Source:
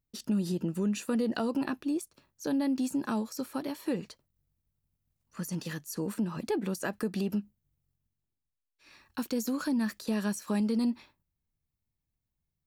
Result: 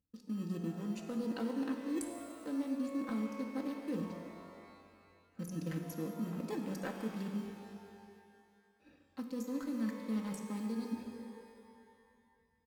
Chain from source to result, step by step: Wiener smoothing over 41 samples; HPF 72 Hz; in parallel at -12 dB: sample-and-hold 30×; on the sum: comb 3.9 ms, depth 72%; reverse; compressor 5:1, threshold -44 dBFS, peak gain reduction 21 dB; reverse; notches 60/120/180/240 Hz; shimmer reverb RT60 2.2 s, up +12 st, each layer -8 dB, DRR 4 dB; gain +5.5 dB

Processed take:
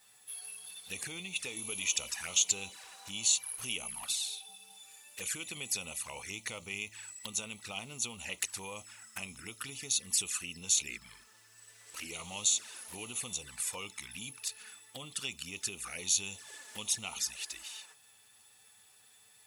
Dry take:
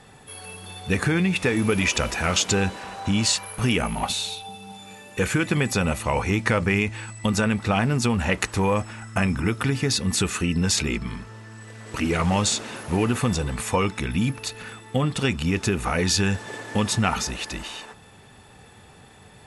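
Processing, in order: bit-crush 11-bit; envelope flanger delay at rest 11.1 ms, full sweep at -19.5 dBFS; pre-emphasis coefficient 0.97

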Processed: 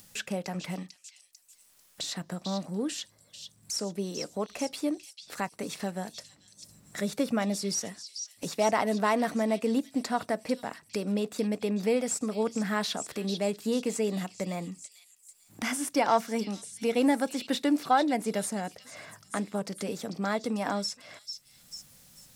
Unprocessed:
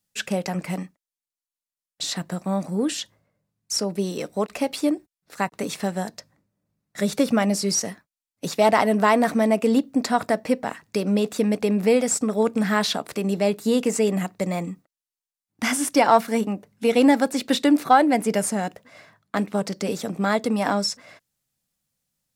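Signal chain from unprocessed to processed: upward compressor, threshold -24 dBFS; delay with a stepping band-pass 0.444 s, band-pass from 4400 Hz, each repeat 0.7 oct, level -4.5 dB; gain -8 dB

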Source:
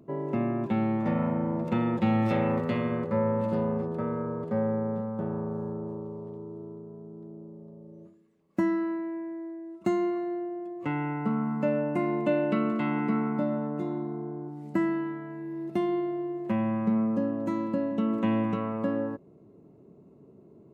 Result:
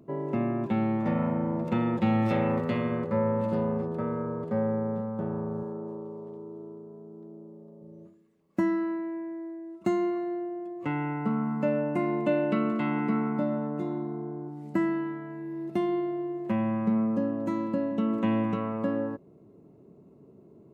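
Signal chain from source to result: 5.63–7.82 HPF 200 Hz 12 dB/oct

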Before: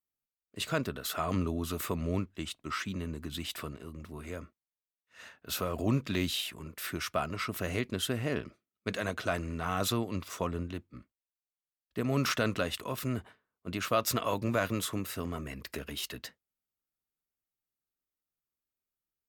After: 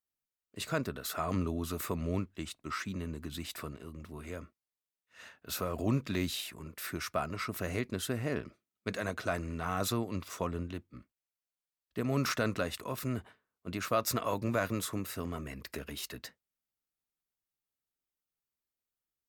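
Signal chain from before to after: dynamic EQ 3100 Hz, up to -7 dB, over -53 dBFS, Q 3.3; gain -1.5 dB

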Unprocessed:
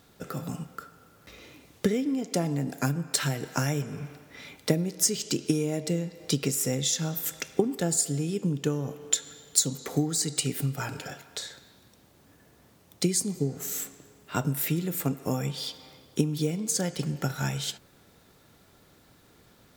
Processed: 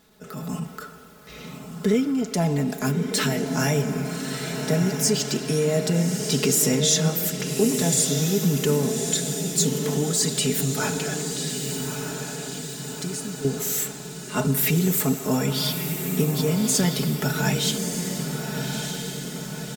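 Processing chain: comb 4.7 ms, depth 89%; AGC gain up to 8 dB; transient shaper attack -7 dB, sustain +2 dB; 11.28–13.45 compressor 3:1, threshold -34 dBFS, peak gain reduction 15 dB; diffused feedback echo 1.23 s, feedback 57%, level -5.5 dB; gain -1.5 dB

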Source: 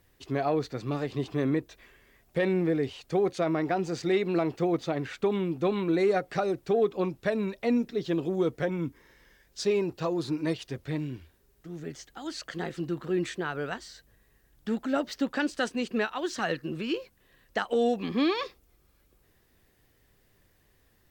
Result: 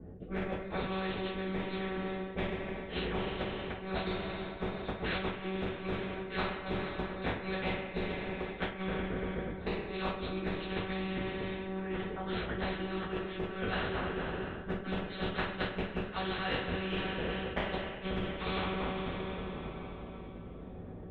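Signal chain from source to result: regenerating reverse delay 0.124 s, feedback 76%, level -13 dB; monotone LPC vocoder at 8 kHz 190 Hz; low-pass opened by the level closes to 370 Hz, open at -26 dBFS; rotary speaker horn 0.9 Hz; flipped gate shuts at -20 dBFS, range -36 dB; two-slope reverb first 0.29 s, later 3.7 s, from -22 dB, DRR -8 dB; in parallel at -2 dB: vocal rider within 4 dB; on the sum: HPF 83 Hz 6 dB/oct; reverse; compressor, threshold -31 dBFS, peak gain reduction 15.5 dB; reverse; LPF 2800 Hz 6 dB/oct; low shelf 150 Hz +7 dB; spectral compressor 2:1

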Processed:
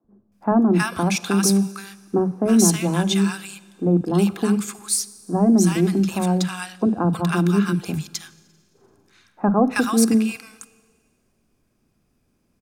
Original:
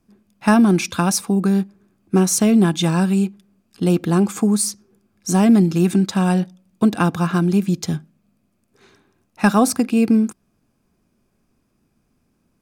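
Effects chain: three bands offset in time mids, lows, highs 40/320 ms, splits 210/1100 Hz; Schroeder reverb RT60 1.8 s, DRR 18.5 dB

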